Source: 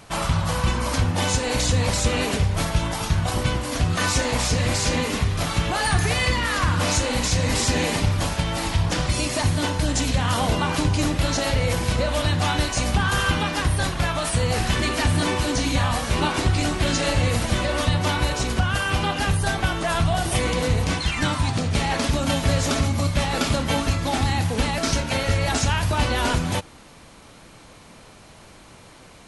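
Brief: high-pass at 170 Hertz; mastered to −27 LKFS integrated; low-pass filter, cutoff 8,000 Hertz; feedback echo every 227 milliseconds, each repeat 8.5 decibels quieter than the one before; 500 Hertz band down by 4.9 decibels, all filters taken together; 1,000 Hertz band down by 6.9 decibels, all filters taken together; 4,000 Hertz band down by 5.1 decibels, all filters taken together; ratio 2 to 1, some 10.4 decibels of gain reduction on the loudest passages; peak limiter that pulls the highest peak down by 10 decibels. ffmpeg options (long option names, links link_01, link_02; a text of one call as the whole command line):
ffmpeg -i in.wav -af "highpass=170,lowpass=8000,equalizer=frequency=500:width_type=o:gain=-3.5,equalizer=frequency=1000:width_type=o:gain=-7.5,equalizer=frequency=4000:width_type=o:gain=-6,acompressor=threshold=-43dB:ratio=2,alimiter=level_in=9.5dB:limit=-24dB:level=0:latency=1,volume=-9.5dB,aecho=1:1:227|454|681|908:0.376|0.143|0.0543|0.0206,volume=14.5dB" out.wav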